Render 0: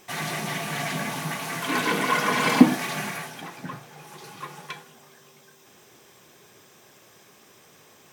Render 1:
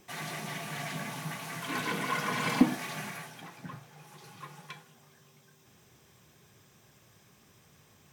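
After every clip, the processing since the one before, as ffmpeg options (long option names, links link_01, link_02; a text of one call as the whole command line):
ffmpeg -i in.wav -filter_complex "[0:a]asubboost=boost=4.5:cutoff=160,acrossover=split=350|1600[link_01][link_02][link_03];[link_01]acompressor=mode=upward:threshold=-50dB:ratio=2.5[link_04];[link_04][link_02][link_03]amix=inputs=3:normalize=0,volume=-8.5dB" out.wav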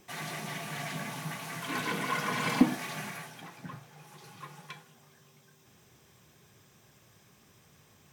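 ffmpeg -i in.wav -af anull out.wav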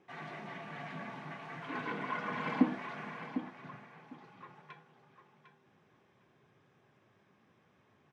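ffmpeg -i in.wav -af "flanger=delay=2.3:depth=1.5:regen=-77:speed=0.6:shape=triangular,highpass=140,lowpass=2100,aecho=1:1:752|1504:0.316|0.0538" out.wav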